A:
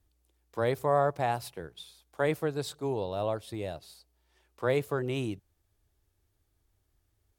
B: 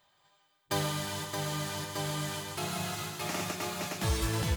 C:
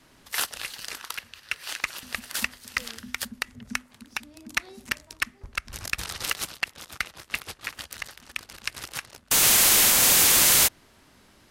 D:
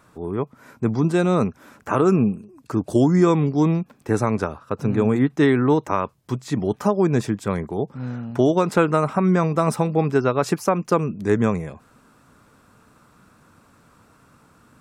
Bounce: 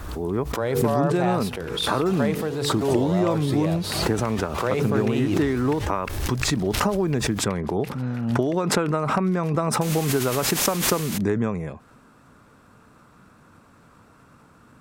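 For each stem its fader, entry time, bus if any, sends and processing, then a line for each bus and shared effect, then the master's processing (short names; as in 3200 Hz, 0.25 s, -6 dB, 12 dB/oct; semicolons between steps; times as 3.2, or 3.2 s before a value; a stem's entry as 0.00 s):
+0.5 dB, 0.00 s, no send, de-hum 48.13 Hz, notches 10; fast leveller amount 50%
-8.0 dB, 1.35 s, no send, shaped vibrato saw up 5.4 Hz, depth 250 cents
-14.5 dB, 0.50 s, no send, dry
+1.5 dB, 0.00 s, no send, compressor, threshold -21 dBFS, peak gain reduction 9.5 dB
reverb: off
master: high shelf 4200 Hz -5.5 dB; backwards sustainer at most 41 dB/s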